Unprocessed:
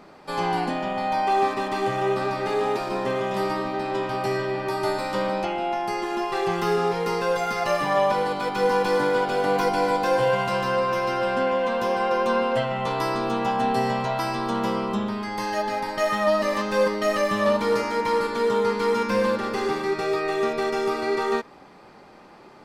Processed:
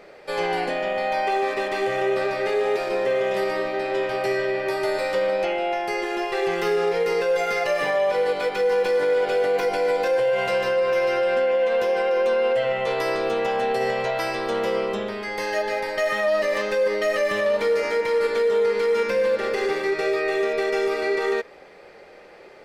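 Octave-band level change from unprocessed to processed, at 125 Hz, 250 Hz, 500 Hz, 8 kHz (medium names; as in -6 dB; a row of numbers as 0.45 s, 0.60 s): -8.5 dB, -5.0 dB, +3.0 dB, no reading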